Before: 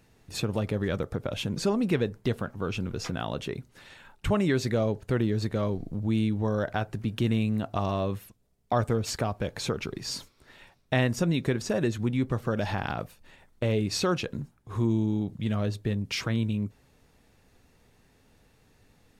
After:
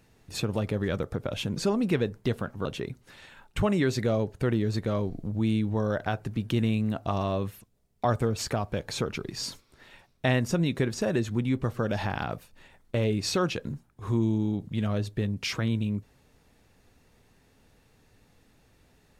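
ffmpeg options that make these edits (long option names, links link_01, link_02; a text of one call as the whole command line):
ffmpeg -i in.wav -filter_complex "[0:a]asplit=2[link_01][link_02];[link_01]atrim=end=2.652[link_03];[link_02]atrim=start=3.328[link_04];[link_03][link_04]acrossfade=duration=0.004:curve1=hsin:curve2=hsin" out.wav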